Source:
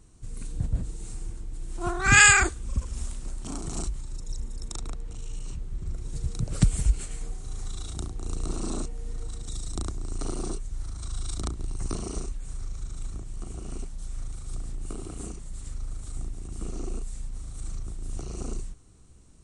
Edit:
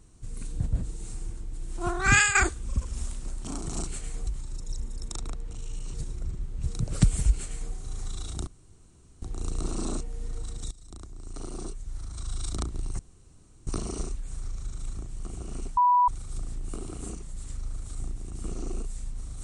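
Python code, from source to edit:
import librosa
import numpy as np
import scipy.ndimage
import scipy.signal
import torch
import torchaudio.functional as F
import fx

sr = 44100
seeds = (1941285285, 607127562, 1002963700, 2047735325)

y = fx.edit(x, sr, fx.fade_out_to(start_s=2.1, length_s=0.25, curve='qua', floor_db=-12.0),
    fx.reverse_span(start_s=5.54, length_s=0.69),
    fx.duplicate(start_s=6.94, length_s=0.4, to_s=3.87),
    fx.insert_room_tone(at_s=8.07, length_s=0.75),
    fx.fade_in_from(start_s=9.56, length_s=1.74, floor_db=-19.0),
    fx.insert_room_tone(at_s=11.84, length_s=0.68),
    fx.bleep(start_s=13.94, length_s=0.31, hz=983.0, db=-17.0), tone=tone)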